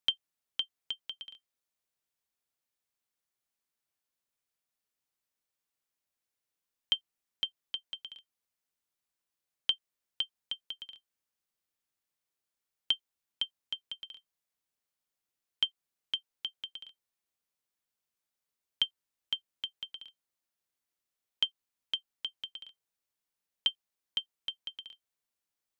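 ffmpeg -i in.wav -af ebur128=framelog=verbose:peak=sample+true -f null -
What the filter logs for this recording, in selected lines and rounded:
Integrated loudness:
  I:         -36.2 LUFS
  Threshold: -46.9 LUFS
Loudness range:
  LRA:         4.1 LU
  Threshold: -59.6 LUFS
  LRA low:   -41.6 LUFS
  LRA high:  -37.5 LUFS
Sample peak:
  Peak:      -15.4 dBFS
True peak:
  Peak:      -15.1 dBFS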